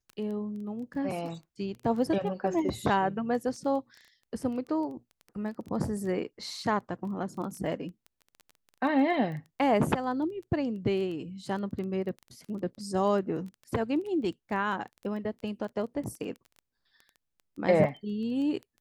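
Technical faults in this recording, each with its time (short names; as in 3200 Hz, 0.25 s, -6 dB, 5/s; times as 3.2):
crackle 12/s -37 dBFS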